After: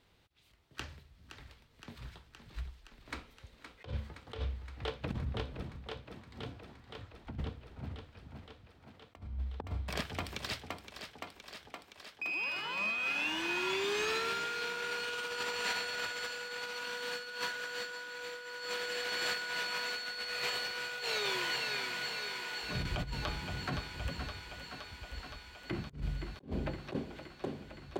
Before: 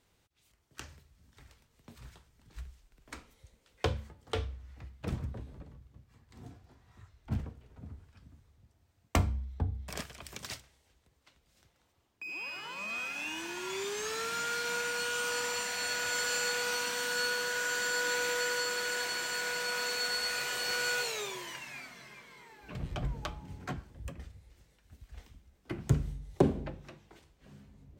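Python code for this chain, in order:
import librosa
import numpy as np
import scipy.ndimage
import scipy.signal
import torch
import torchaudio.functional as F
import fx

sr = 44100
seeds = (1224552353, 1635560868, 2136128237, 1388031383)

y = fx.high_shelf_res(x, sr, hz=5200.0, db=-7.0, q=1.5)
y = fx.echo_thinned(y, sr, ms=518, feedback_pct=78, hz=200.0, wet_db=-9.5)
y = fx.over_compress(y, sr, threshold_db=-36.0, ratio=-0.5)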